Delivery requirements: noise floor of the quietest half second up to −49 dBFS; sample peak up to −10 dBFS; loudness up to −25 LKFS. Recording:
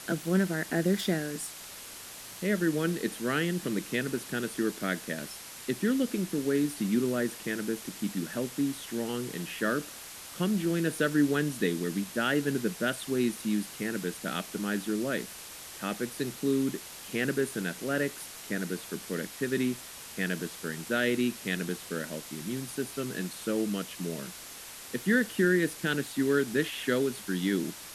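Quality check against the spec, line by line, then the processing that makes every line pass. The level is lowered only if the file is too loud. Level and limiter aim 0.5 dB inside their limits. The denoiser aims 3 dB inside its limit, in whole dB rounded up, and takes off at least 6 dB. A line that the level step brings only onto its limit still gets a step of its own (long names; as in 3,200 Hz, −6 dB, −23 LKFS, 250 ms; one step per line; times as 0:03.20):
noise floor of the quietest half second −45 dBFS: out of spec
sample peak −13.5 dBFS: in spec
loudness −31.0 LKFS: in spec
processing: broadband denoise 7 dB, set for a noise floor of −45 dBFS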